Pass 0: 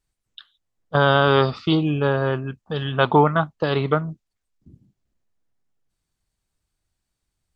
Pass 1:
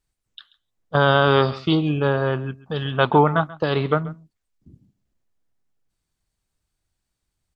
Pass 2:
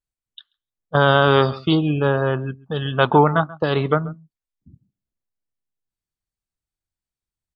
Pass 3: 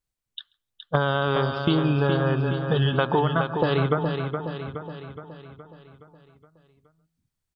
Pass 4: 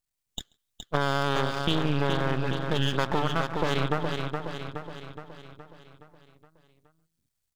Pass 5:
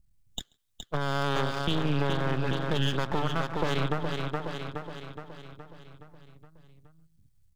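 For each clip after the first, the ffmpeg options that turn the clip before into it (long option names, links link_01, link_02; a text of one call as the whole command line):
ffmpeg -i in.wav -af "aecho=1:1:135:0.112" out.wav
ffmpeg -i in.wav -af "afftdn=noise_reduction=15:noise_floor=-39,volume=1.5dB" out.wav
ffmpeg -i in.wav -filter_complex "[0:a]equalizer=frequency=130:width_type=o:width=0.77:gain=2,acompressor=threshold=-23dB:ratio=6,asplit=2[link_01][link_02];[link_02]aecho=0:1:419|838|1257|1676|2095|2514|2933:0.473|0.256|0.138|0.0745|0.0402|0.0217|0.0117[link_03];[link_01][link_03]amix=inputs=2:normalize=0,volume=4dB" out.wav
ffmpeg -i in.wav -filter_complex "[0:a]highshelf=frequency=2700:gain=9,asplit=2[link_01][link_02];[link_02]alimiter=limit=-15dB:level=0:latency=1,volume=-2dB[link_03];[link_01][link_03]amix=inputs=2:normalize=0,aeval=exprs='max(val(0),0)':channel_layout=same,volume=-5.5dB" out.wav
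ffmpeg -i in.wav -filter_complex "[0:a]acrossover=split=170[link_01][link_02];[link_01]acompressor=mode=upward:threshold=-42dB:ratio=2.5[link_03];[link_02]alimiter=limit=-17.5dB:level=0:latency=1:release=428[link_04];[link_03][link_04]amix=inputs=2:normalize=0" out.wav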